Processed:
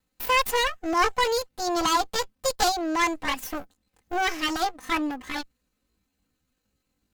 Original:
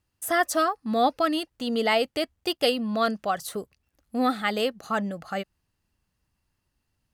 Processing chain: comb filter that takes the minimum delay 5.8 ms; pitch shift +7 st; trim +2.5 dB

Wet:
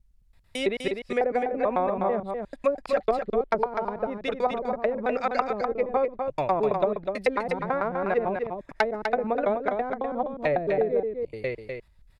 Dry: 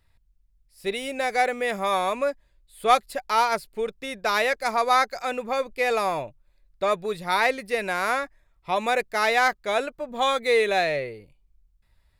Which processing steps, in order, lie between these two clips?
slices played last to first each 110 ms, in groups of 5; low-pass that closes with the level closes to 340 Hz, closed at -19.5 dBFS; delay 250 ms -5.5 dB; trim +3.5 dB

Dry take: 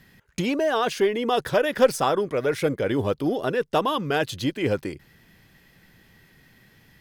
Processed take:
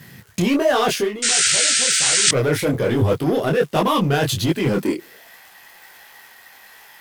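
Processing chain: high-pass sweep 110 Hz -> 820 Hz, 4.60–5.31 s; crackle 320 per s -50 dBFS; in parallel at +1.5 dB: overload inside the chain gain 24.5 dB; on the sum: painted sound noise, 1.22–2.29 s, 1.3–9.2 kHz -5 dBFS; treble shelf 8.8 kHz +8 dB; reverse; compression 10:1, threshold -18 dBFS, peak gain reduction 18.5 dB; reverse; detune thickener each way 46 cents; trim +7 dB

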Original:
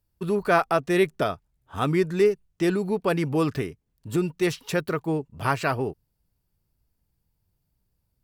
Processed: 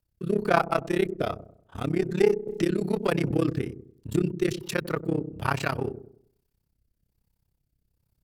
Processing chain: in parallel at -3.5 dB: one-sided clip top -28 dBFS; on the sum: rotary cabinet horn 1.2 Hz; AM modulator 33 Hz, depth 95%; feedback echo behind a low-pass 96 ms, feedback 37%, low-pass 440 Hz, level -9 dB; 2.47–3.31 s: three bands compressed up and down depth 70%

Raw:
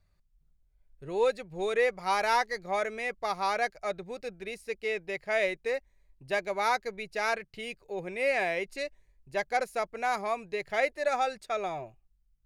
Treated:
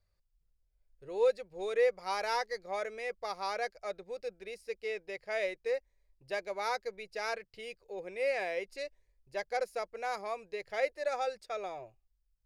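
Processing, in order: graphic EQ with 31 bands 160 Hz -10 dB, 250 Hz -7 dB, 500 Hz +8 dB, 5 kHz +7 dB; trim -7.5 dB

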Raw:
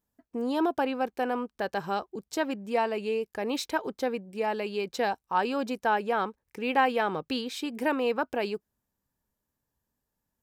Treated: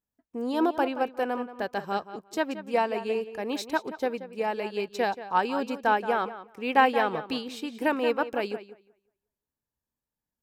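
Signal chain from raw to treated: tape echo 178 ms, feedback 25%, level -8.5 dB, low-pass 3.7 kHz; upward expansion 1.5:1, over -45 dBFS; trim +4 dB

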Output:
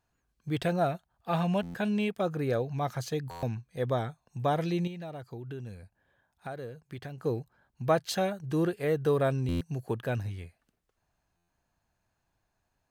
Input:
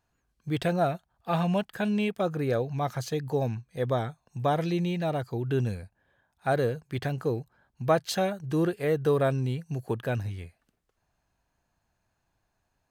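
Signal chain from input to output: 4.87–7.24 s: compression 3:1, threshold -39 dBFS, peak gain reduction 13.5 dB; buffer glitch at 1.62/3.30/9.48/11.36 s, samples 512, times 10; trim -2 dB

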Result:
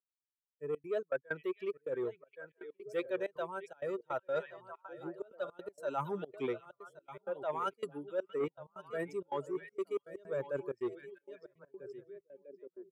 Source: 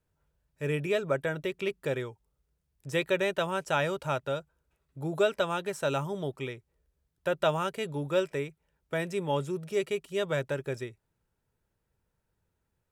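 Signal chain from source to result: expander on every frequency bin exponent 2; high-pass 170 Hz 24 dB/octave; high-order bell 740 Hz +12.5 dB 2.5 oct; reverse; compression 20:1, threshold -42 dBFS, peak gain reduction 32 dB; reverse; repeats whose band climbs or falls 648 ms, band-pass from 2.6 kHz, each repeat -1.4 oct, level -8 dB; rotary cabinet horn 0.6 Hz; delay 1122 ms -15.5 dB; trance gate "xxx.xxxx.xx.x.xx" 161 bpm -24 dB; transformer saturation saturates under 550 Hz; trim +12 dB

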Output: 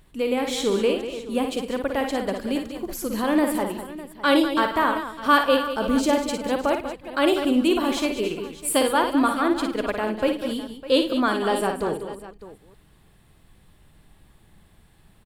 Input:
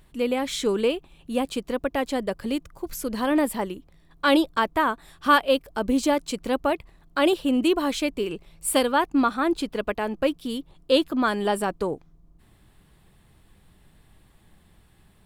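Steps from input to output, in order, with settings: chunks repeated in reverse 203 ms, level -12.5 dB; multi-tap echo 56/106/195/604 ms -6.5/-19.5/-10.5/-16 dB

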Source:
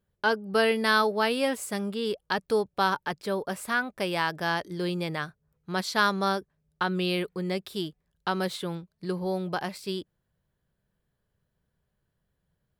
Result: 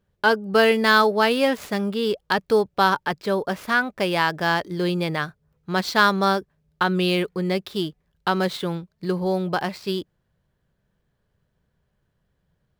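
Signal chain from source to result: median filter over 5 samples; trim +6.5 dB

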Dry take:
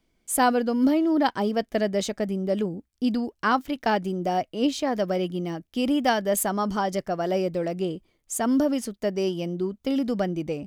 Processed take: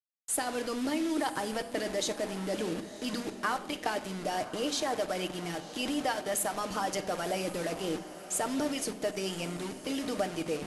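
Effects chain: high-pass 86 Hz 6 dB/octave; de-hum 142.6 Hz, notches 12; harmonic-percussive split harmonic -13 dB; in parallel at -3 dB: level held to a coarse grid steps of 13 dB; on the sum: transient shaper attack -6 dB, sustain -1 dB; compression 12:1, threshold -29 dBFS, peak gain reduction 12 dB; bit crusher 7-bit; brick-wall FIR low-pass 12 kHz; echo that smears into a reverb 1049 ms, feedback 48%, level -14 dB; on a send at -9 dB: reverberation RT60 0.70 s, pre-delay 7 ms; on the sum: trim +1 dB

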